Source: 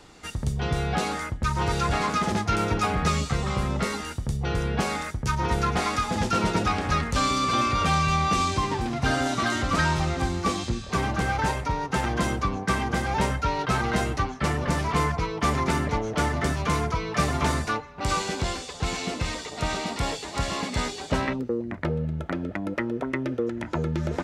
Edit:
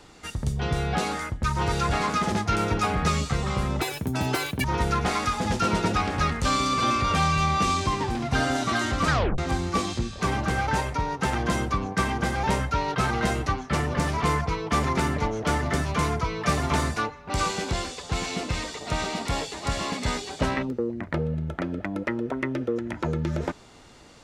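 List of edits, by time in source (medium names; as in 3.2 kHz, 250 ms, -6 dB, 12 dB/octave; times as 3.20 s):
3.81–5.35 s: speed 185%
9.81 s: tape stop 0.28 s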